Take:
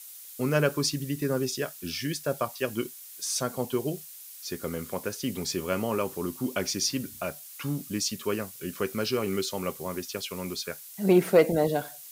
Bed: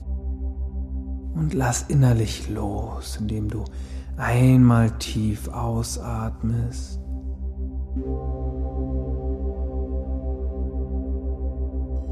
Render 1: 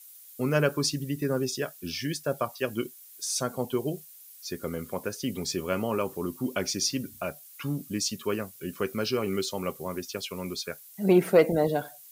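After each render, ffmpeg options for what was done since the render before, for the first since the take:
-af "afftdn=nr=8:nf=-46"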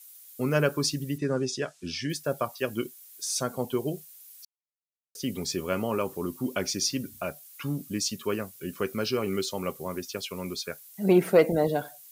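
-filter_complex "[0:a]asettb=1/sr,asplit=3[s0][s1][s2];[s0]atrim=end=1.184[s3];[s1]atrim=start=1.18:end=2.1,asetpts=PTS-STARTPTS,afade=t=in:d=0.004:c=qsin,afade=t=out:st=0.916:d=0.004:c=qsin,lowpass=f=8100:w=0.5412,lowpass=f=8100:w=1.3066[s4];[s2]atrim=start=2.096[s5];[s3][s4]acrossfade=d=0.004:c1=hsin:c2=qsin[s6];[s6][s5]acrossfade=d=0.004:c1=qsin:c2=hsin,asplit=3[s7][s8][s9];[s7]atrim=end=4.45,asetpts=PTS-STARTPTS,afade=t=out:st=4.446:d=0.004:c=hsin[s10];[s8]atrim=start=4.45:end=5.15,asetpts=PTS-STARTPTS,volume=0[s11];[s9]atrim=start=5.15,asetpts=PTS-STARTPTS,afade=t=in:d=0.004:c=hsin[s12];[s10][s11][s12]concat=n=3:v=0:a=1"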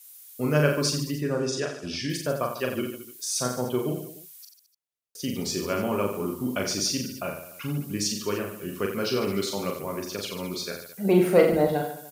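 -af "aecho=1:1:40|88|145.6|214.7|297.7:0.631|0.398|0.251|0.158|0.1"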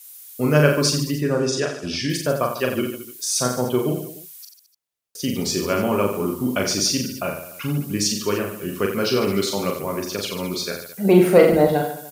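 -af "volume=2,alimiter=limit=0.794:level=0:latency=1"

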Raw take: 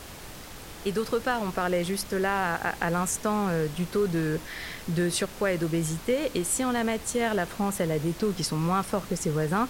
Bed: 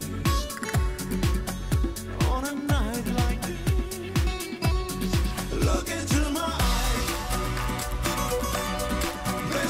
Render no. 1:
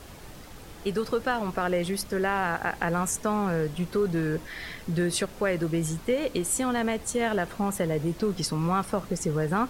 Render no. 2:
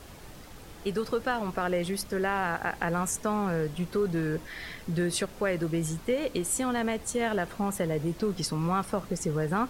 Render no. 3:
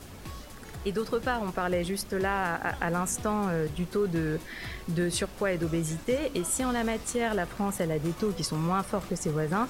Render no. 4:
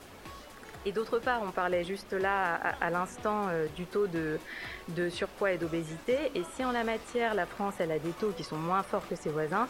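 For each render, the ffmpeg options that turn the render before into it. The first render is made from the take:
-af "afftdn=nr=6:nf=-43"
-af "volume=0.794"
-filter_complex "[1:a]volume=0.126[s0];[0:a][s0]amix=inputs=2:normalize=0"
-filter_complex "[0:a]acrossover=split=4100[s0][s1];[s1]acompressor=threshold=0.00562:ratio=4:attack=1:release=60[s2];[s0][s2]amix=inputs=2:normalize=0,bass=f=250:g=-11,treble=f=4000:g=-6"

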